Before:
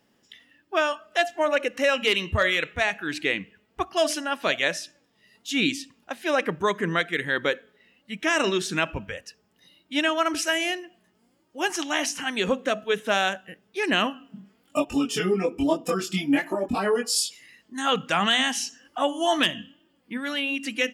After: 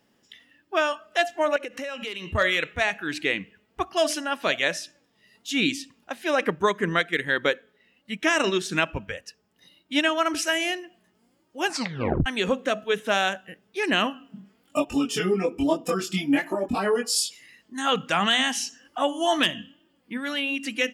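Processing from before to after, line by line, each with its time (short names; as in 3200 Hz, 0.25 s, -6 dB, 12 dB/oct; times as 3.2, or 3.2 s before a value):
1.56–2.35 compressor, threshold -30 dBFS
6.41–10.1 transient shaper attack +3 dB, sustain -3 dB
11.66 tape stop 0.60 s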